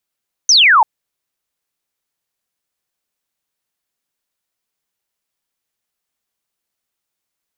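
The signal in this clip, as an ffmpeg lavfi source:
-f lavfi -i "aevalsrc='0.501*clip(t/0.002,0,1)*clip((0.34-t)/0.002,0,1)*sin(2*PI*6400*0.34/log(820/6400)*(exp(log(820/6400)*t/0.34)-1))':d=0.34:s=44100"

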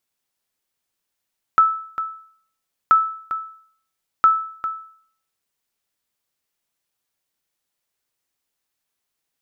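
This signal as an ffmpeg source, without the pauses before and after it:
-f lavfi -i "aevalsrc='0.473*(sin(2*PI*1310*mod(t,1.33))*exp(-6.91*mod(t,1.33)/0.56)+0.251*sin(2*PI*1310*max(mod(t,1.33)-0.4,0))*exp(-6.91*max(mod(t,1.33)-0.4,0)/0.56))':d=3.99:s=44100"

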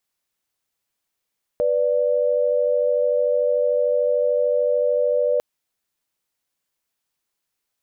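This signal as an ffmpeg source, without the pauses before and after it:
-f lavfi -i "aevalsrc='0.106*(sin(2*PI*493.88*t)+sin(2*PI*587.33*t))':d=3.8:s=44100"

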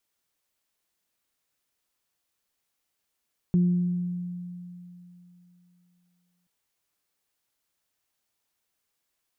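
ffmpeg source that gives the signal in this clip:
-f lavfi -i "aevalsrc='0.141*pow(10,-3*t/3.1)*sin(2*PI*177*t)+0.0224*pow(10,-3*t/1.2)*sin(2*PI*354*t)':d=2.93:s=44100"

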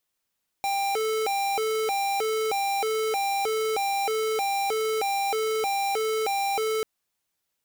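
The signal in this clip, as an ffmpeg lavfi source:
-f lavfi -i "aevalsrc='0.0501*(2*lt(mod((615.5*t+177.5/1.6*(0.5-abs(mod(1.6*t,1)-0.5))),1),0.5)-1)':d=6.19:s=44100"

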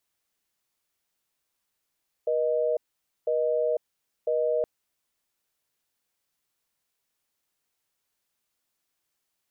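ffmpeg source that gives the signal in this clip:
-f lavfi -i "aevalsrc='0.0562*(sin(2*PI*480*t)+sin(2*PI*620*t))*clip(min(mod(t,1),0.5-mod(t,1))/0.005,0,1)':d=2.37:s=44100"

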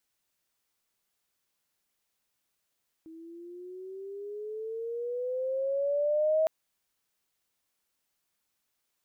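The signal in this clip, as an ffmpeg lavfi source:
-f lavfi -i "aevalsrc='pow(10,(-21.5+23*(t/3.41-1))/20)*sin(2*PI*320*3.41/(12*log(2)/12)*(exp(12*log(2)/12*t/3.41)-1))':d=3.41:s=44100"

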